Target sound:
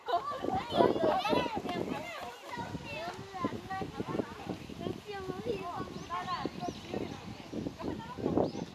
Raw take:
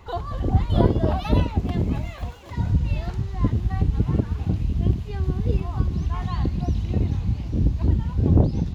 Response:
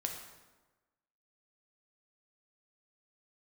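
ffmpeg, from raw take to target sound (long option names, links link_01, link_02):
-af "highpass=430" -ar 32000 -c:a libmp3lame -b:a 80k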